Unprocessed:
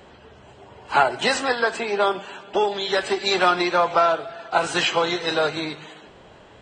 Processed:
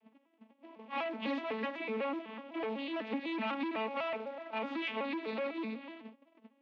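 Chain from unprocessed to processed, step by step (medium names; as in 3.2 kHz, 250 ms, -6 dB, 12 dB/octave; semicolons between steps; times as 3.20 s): vocoder on a broken chord major triad, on A3, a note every 125 ms; gate -46 dBFS, range -19 dB; in parallel at -2 dB: compression, threshold -33 dBFS, peak gain reduction 17.5 dB; on the sum: saturation -23.5 dBFS, distortion -7 dB; short-mantissa float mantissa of 2-bit; cabinet simulation 230–3300 Hz, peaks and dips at 240 Hz +9 dB, 370 Hz -8 dB, 720 Hz -5 dB, 1.5 kHz -8 dB, 2.4 kHz +6 dB; trim -7 dB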